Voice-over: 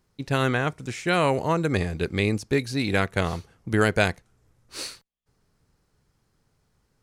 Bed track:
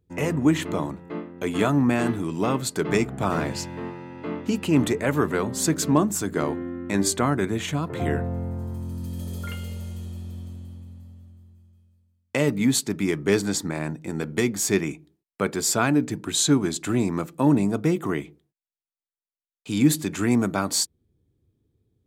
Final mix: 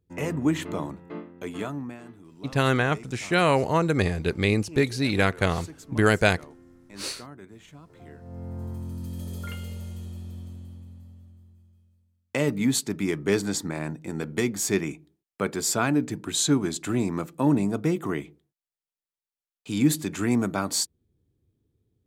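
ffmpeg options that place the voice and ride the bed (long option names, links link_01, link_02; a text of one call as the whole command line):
ffmpeg -i stem1.wav -i stem2.wav -filter_complex "[0:a]adelay=2250,volume=1dB[link_01];[1:a]volume=15dB,afade=type=out:start_time=1.1:duration=0.9:silence=0.133352,afade=type=in:start_time=8.2:duration=0.45:silence=0.112202[link_02];[link_01][link_02]amix=inputs=2:normalize=0" out.wav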